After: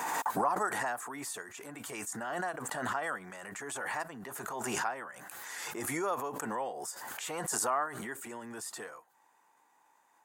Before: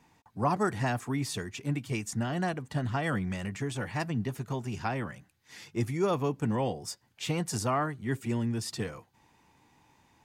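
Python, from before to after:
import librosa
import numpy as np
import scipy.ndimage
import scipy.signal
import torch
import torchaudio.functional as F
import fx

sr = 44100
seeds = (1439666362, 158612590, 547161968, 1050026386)

y = scipy.signal.sosfilt(scipy.signal.butter(2, 720.0, 'highpass', fs=sr, output='sos'), x)
y = fx.band_shelf(y, sr, hz=3500.0, db=-11.0, octaves=1.7)
y = fx.pre_swell(y, sr, db_per_s=21.0)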